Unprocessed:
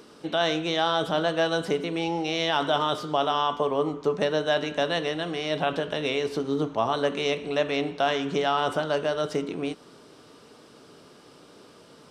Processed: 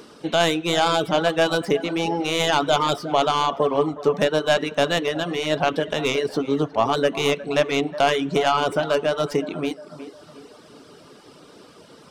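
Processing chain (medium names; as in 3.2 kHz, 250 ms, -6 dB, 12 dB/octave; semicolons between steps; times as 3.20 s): tracing distortion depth 0.062 ms; tape echo 361 ms, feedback 48%, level -11 dB, low-pass 1.9 kHz; reverb removal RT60 0.71 s; trim +5.5 dB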